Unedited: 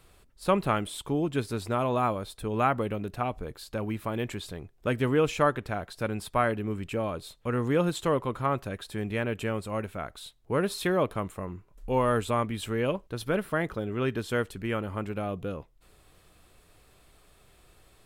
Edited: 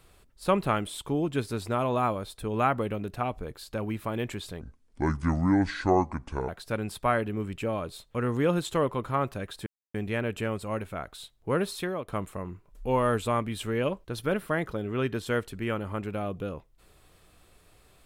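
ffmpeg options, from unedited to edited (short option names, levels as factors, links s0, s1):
-filter_complex "[0:a]asplit=5[s0][s1][s2][s3][s4];[s0]atrim=end=4.614[s5];[s1]atrim=start=4.61:end=5.79,asetpts=PTS-STARTPTS,asetrate=27783,aresample=44100[s6];[s2]atrim=start=5.786:end=8.97,asetpts=PTS-STARTPTS,afade=t=out:st=3.18:d=0.004:c=hsin,apad=pad_dur=0.28[s7];[s3]atrim=start=8.97:end=11.11,asetpts=PTS-STARTPTS,afade=t=in:d=0.004:c=hsin,afade=t=out:st=1.66:d=0.48:silence=0.199526[s8];[s4]atrim=start=11.11,asetpts=PTS-STARTPTS,afade=t=in:d=0.004:c=hsin:silence=0.199526[s9];[s5][s6]acrossfade=d=0.004:c1=hsin:c2=hsin[s10];[s7][s8][s9]concat=n=3:v=0:a=1[s11];[s10][s11]acrossfade=d=0.004:c1=hsin:c2=hsin"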